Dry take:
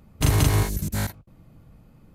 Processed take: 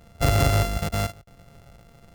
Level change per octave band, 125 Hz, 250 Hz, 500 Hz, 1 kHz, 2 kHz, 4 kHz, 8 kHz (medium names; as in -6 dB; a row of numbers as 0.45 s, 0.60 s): -1.0 dB, -2.0 dB, +4.5 dB, +4.5 dB, +2.0 dB, +1.0 dB, -3.5 dB